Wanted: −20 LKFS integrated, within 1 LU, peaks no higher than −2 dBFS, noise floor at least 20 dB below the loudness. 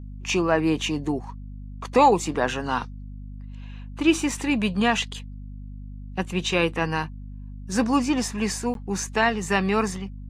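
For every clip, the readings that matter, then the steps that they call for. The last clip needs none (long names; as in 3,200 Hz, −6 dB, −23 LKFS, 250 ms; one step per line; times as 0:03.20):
number of dropouts 1; longest dropout 12 ms; mains hum 50 Hz; hum harmonics up to 250 Hz; level of the hum −35 dBFS; integrated loudness −24.0 LKFS; sample peak −6.5 dBFS; target loudness −20.0 LKFS
→ repair the gap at 0:08.74, 12 ms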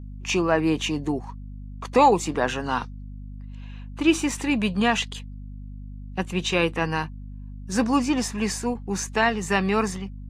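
number of dropouts 0; mains hum 50 Hz; hum harmonics up to 250 Hz; level of the hum −35 dBFS
→ mains-hum notches 50/100/150/200/250 Hz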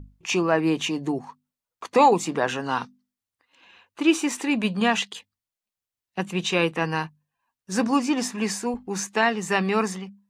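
mains hum none found; integrated loudness −24.0 LKFS; sample peak −6.5 dBFS; target loudness −20.0 LKFS
→ level +4 dB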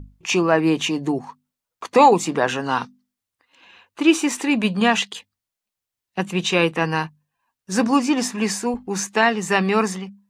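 integrated loudness −20.0 LKFS; sample peak −2.5 dBFS; background noise floor −86 dBFS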